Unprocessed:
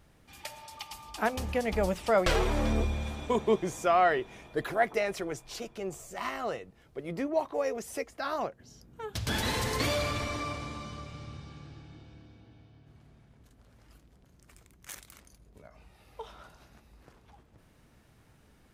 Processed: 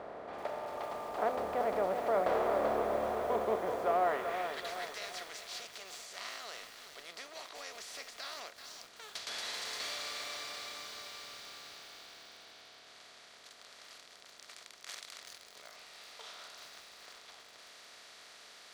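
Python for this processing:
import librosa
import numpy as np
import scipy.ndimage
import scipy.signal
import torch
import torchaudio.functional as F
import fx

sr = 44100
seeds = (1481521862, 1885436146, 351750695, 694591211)

y = fx.bin_compress(x, sr, power=0.4)
y = fx.filter_sweep_bandpass(y, sr, from_hz=670.0, to_hz=5000.0, start_s=4.02, end_s=4.7, q=1.1)
y = fx.echo_crushed(y, sr, ms=383, feedback_pct=55, bits=7, wet_db=-7)
y = y * 10.0 ** (-8.0 / 20.0)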